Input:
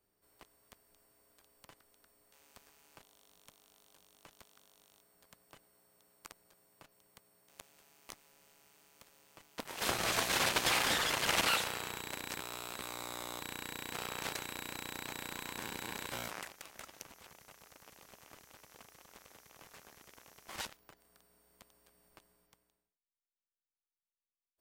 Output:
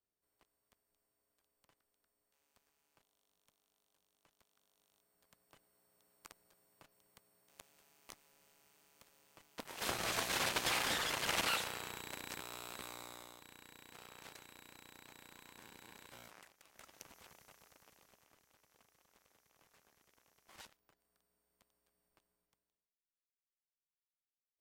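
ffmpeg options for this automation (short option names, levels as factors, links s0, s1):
-af "volume=2.37,afade=t=in:st=4.4:d=1.87:silence=0.281838,afade=t=out:st=12.81:d=0.56:silence=0.298538,afade=t=in:st=16.62:d=0.57:silence=0.251189,afade=t=out:st=17.19:d=1.14:silence=0.281838"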